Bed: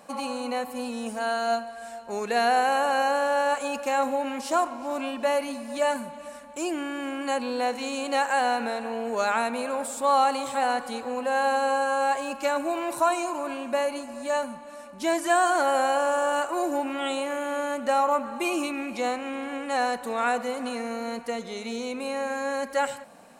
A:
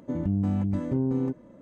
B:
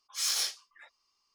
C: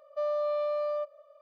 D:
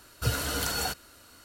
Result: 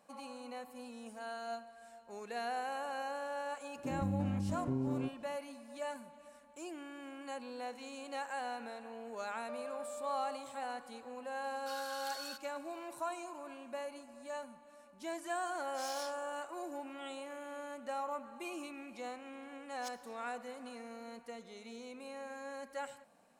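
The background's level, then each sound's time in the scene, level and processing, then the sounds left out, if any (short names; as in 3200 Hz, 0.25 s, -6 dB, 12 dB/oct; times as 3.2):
bed -16.5 dB
3.76 add A -9.5 dB
9.32 add C -8 dB + compressor, threshold -34 dBFS
11.44 add D -11 dB + rippled Chebyshev high-pass 1100 Hz, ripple 9 dB
15.6 add B -16.5 dB
19.68 add B -11 dB + flipped gate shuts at -24 dBFS, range -28 dB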